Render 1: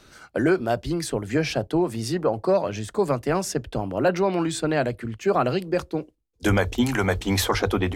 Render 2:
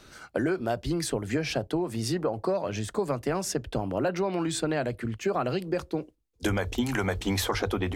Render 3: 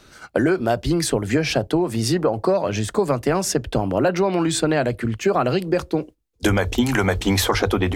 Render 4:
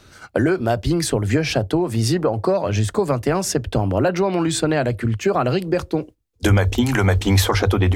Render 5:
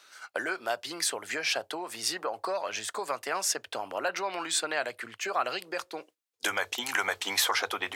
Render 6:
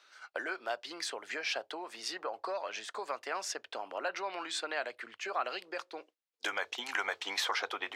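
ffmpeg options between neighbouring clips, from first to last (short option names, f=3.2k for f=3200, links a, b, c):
-af "acompressor=threshold=-24dB:ratio=6"
-af "agate=range=-6dB:threshold=-45dB:ratio=16:detection=peak,volume=8.5dB"
-af "equalizer=f=95:t=o:w=0.67:g=8.5"
-af "highpass=950,volume=-3.5dB"
-filter_complex "[0:a]acrossover=split=230 6000:gain=0.112 1 0.178[a][b][c];[a][b][c]amix=inputs=3:normalize=0,volume=-5dB"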